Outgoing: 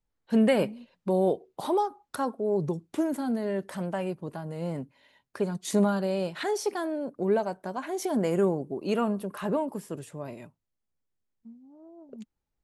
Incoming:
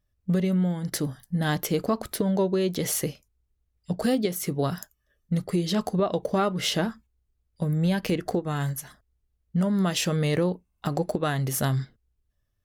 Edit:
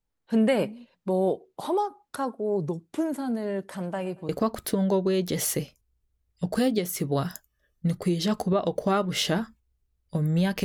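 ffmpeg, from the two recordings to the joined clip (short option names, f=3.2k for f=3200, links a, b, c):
-filter_complex "[0:a]asettb=1/sr,asplit=3[a][b][c];[a]atrim=end=3.694[d];[b]atrim=start=3.69:end=4.29,asetpts=PTS-STARTPTS,afade=t=in:d=0.004:c=qsin,afade=t=out:st=0.596:d=0.004:c=qsin,aecho=1:1:115|230|345:0.0794|0.0389|0.0191,atrim=end_sample=26460[e];[c]atrim=start=4.286[f];[d][e]acrossfade=d=0.004:c1=hsin:c2=qsin[g];[g][f]acrossfade=d=0.004:c1=qsin:c2=hsin,apad=whole_dur=10.64,atrim=end=10.64,atrim=end=4.292[h];[1:a]atrim=start=1.758:end=8.11[i];[h][i]acrossfade=d=0.004:c1=hsin:c2=hsin"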